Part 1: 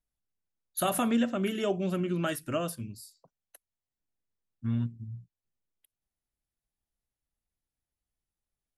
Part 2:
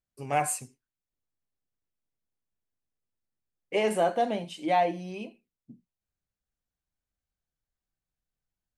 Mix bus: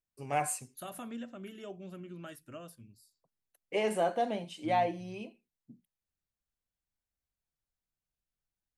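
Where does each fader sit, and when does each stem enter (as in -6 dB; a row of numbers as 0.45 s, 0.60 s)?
-15.5 dB, -4.5 dB; 0.00 s, 0.00 s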